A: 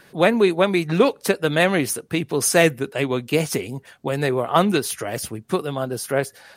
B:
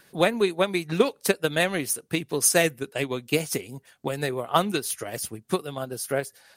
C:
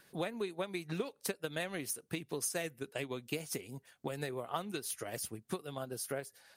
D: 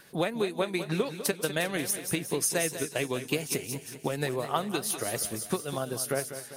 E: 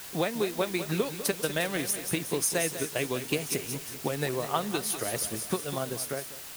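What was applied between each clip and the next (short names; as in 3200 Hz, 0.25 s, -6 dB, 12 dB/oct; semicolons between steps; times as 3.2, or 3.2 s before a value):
transient shaper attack +6 dB, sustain -3 dB; high shelf 4000 Hz +9 dB; gain -8.5 dB
compressor 4:1, threshold -28 dBFS, peak gain reduction 12.5 dB; gain -7 dB
on a send: thin delay 0.178 s, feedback 48%, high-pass 4500 Hz, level -6 dB; on the sum: warbling echo 0.199 s, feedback 52%, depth 80 cents, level -11.5 dB; gain +8.5 dB
ending faded out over 0.71 s; added noise white -43 dBFS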